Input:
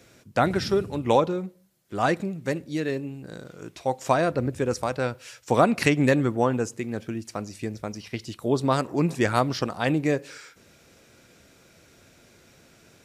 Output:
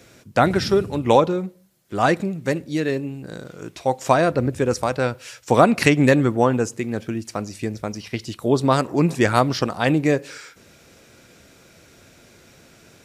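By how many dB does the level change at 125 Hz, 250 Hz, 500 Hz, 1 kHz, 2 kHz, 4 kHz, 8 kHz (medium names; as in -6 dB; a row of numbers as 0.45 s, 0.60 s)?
+5.0 dB, +5.0 dB, +5.0 dB, +5.0 dB, +5.0 dB, +5.0 dB, +5.0 dB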